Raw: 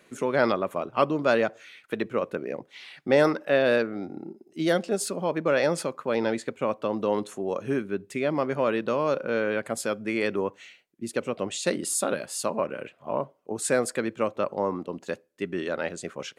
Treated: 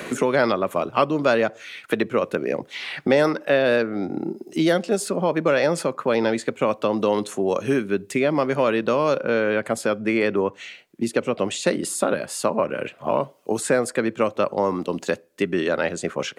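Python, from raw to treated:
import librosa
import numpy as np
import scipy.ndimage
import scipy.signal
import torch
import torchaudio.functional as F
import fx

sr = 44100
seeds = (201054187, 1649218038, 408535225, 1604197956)

y = fx.high_shelf(x, sr, hz=4500.0, db=-6.5, at=(9.18, 11.45))
y = fx.band_squash(y, sr, depth_pct=70)
y = y * librosa.db_to_amplitude(5.0)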